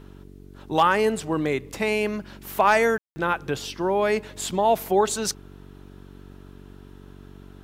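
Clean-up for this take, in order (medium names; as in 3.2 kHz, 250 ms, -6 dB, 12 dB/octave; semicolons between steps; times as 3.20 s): clip repair -8.5 dBFS; de-hum 47.3 Hz, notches 9; room tone fill 2.98–3.16 s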